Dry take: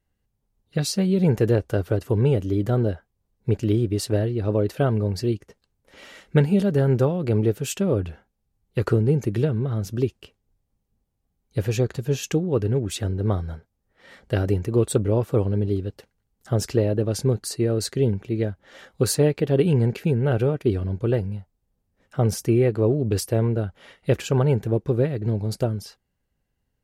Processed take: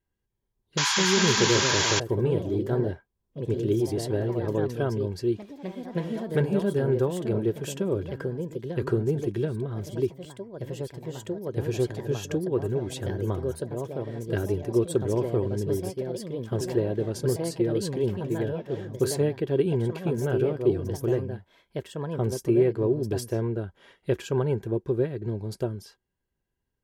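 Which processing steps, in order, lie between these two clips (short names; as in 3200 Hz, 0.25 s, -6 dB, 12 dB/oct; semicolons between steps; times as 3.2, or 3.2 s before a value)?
echoes that change speed 0.298 s, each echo +2 st, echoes 3, each echo -6 dB; painted sound noise, 0.77–2, 770–7300 Hz -18 dBFS; small resonant body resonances 370/980/1600/3300 Hz, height 9 dB, ringing for 40 ms; gain -8 dB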